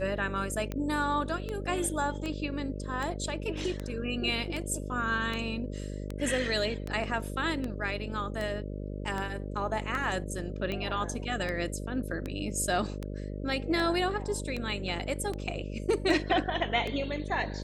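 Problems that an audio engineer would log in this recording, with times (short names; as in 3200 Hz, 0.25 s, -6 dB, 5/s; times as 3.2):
buzz 50 Hz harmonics 12 -37 dBFS
tick 78 rpm -21 dBFS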